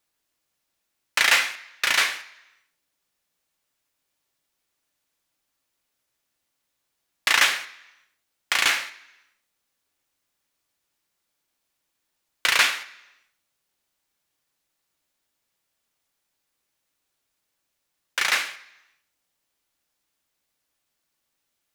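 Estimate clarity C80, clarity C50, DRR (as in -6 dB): 18.0 dB, 16.0 dB, 8.5 dB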